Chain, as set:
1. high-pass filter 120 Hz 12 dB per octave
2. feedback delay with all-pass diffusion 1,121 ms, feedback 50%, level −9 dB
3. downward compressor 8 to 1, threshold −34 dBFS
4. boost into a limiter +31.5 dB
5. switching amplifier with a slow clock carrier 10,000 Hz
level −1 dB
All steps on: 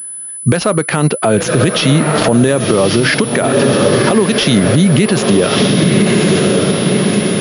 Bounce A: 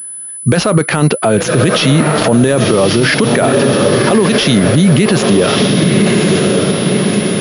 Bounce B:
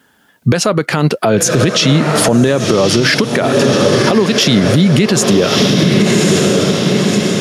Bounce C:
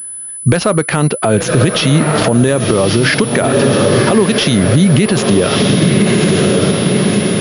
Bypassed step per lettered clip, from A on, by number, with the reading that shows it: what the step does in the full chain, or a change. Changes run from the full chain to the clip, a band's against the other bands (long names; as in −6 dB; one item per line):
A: 3, average gain reduction 5.0 dB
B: 5, 4 kHz band +2.5 dB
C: 1, 125 Hz band +1.5 dB